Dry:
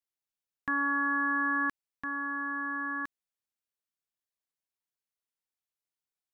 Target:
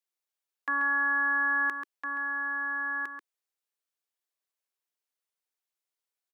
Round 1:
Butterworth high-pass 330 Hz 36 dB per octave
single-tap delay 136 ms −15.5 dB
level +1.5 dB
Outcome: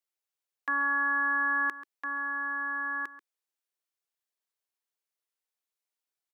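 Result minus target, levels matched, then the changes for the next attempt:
echo-to-direct −7.5 dB
change: single-tap delay 136 ms −8 dB

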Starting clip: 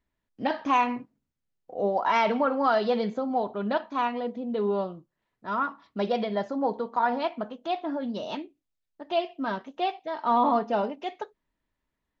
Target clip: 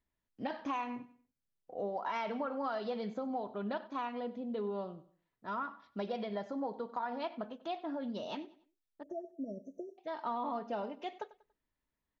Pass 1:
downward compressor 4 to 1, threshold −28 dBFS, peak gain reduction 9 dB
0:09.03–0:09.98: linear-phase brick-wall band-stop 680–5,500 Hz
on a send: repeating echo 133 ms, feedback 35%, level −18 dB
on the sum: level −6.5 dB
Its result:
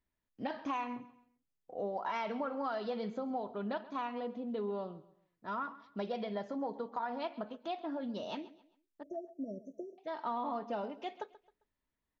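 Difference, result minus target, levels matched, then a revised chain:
echo 38 ms late
downward compressor 4 to 1, threshold −28 dBFS, peak gain reduction 9 dB
0:09.03–0:09.98: linear-phase brick-wall band-stop 680–5,500 Hz
on a send: repeating echo 95 ms, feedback 35%, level −18 dB
on the sum: level −6.5 dB

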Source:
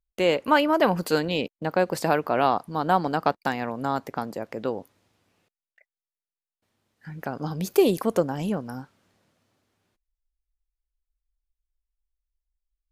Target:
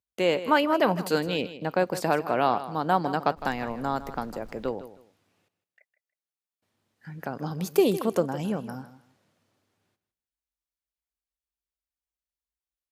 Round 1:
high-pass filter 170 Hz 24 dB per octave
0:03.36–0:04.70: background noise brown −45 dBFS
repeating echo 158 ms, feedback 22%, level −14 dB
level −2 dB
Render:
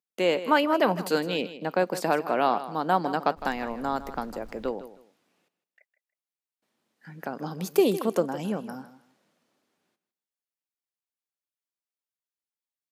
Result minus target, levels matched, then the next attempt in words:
125 Hz band −3.5 dB
high-pass filter 73 Hz 24 dB per octave
0:03.36–0:04.70: background noise brown −45 dBFS
repeating echo 158 ms, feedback 22%, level −14 dB
level −2 dB

